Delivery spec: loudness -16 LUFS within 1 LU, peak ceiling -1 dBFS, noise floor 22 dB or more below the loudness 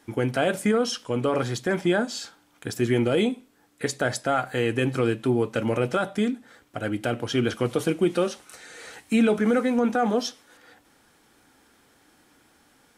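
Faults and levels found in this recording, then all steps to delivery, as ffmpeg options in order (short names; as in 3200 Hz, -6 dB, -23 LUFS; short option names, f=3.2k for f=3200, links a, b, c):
loudness -25.0 LUFS; peak -11.0 dBFS; loudness target -16.0 LUFS
-> -af "volume=9dB"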